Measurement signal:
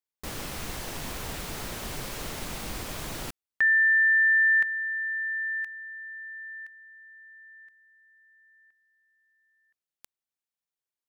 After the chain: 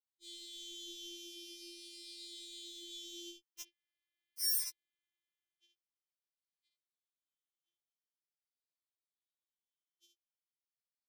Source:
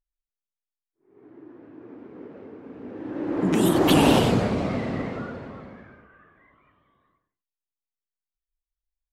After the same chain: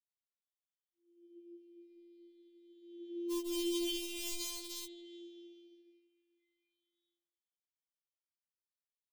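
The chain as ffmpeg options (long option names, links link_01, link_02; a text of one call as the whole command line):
ffmpeg -i in.wav -filter_complex "[0:a]afftfilt=real='re*pow(10,10/40*sin(2*PI*(0.97*log(max(b,1)*sr/1024/100)/log(2)-(-0.45)*(pts-256)/sr)))':imag='im*pow(10,10/40*sin(2*PI*(0.97*log(max(b,1)*sr/1024/100)/log(2)-(-0.45)*(pts-256)/sr)))':win_size=1024:overlap=0.75,asplit=2[link_01][link_02];[link_02]aecho=0:1:35|59|76:0.211|0.473|0.211[link_03];[link_01][link_03]amix=inputs=2:normalize=0,afftfilt=real='hypot(re,im)*cos(PI*b)':imag='0':win_size=2048:overlap=0.75,asplit=3[link_04][link_05][link_06];[link_04]bandpass=frequency=270:width_type=q:width=8,volume=0dB[link_07];[link_05]bandpass=frequency=2290:width_type=q:width=8,volume=-6dB[link_08];[link_06]bandpass=frequency=3010:width_type=q:width=8,volume=-9dB[link_09];[link_07][link_08][link_09]amix=inputs=3:normalize=0,acrossover=split=400|2900[link_10][link_11][link_12];[link_11]acrusher=bits=6:mix=0:aa=0.000001[link_13];[link_12]highshelf=frequency=7300:gain=-9.5[link_14];[link_10][link_13][link_14]amix=inputs=3:normalize=0,acrossover=split=140[link_15][link_16];[link_16]acompressor=threshold=-40dB:ratio=3:attack=6.1:release=42:knee=2.83:detection=peak[link_17];[link_15][link_17]amix=inputs=2:normalize=0,firequalizer=gain_entry='entry(100,0);entry(300,-15);entry(1000,-12);entry(1500,-28);entry(3300,-1);entry(7800,4)':delay=0.05:min_phase=1,afftfilt=real='re*4*eq(mod(b,16),0)':imag='im*4*eq(mod(b,16),0)':win_size=2048:overlap=0.75,volume=13dB" out.wav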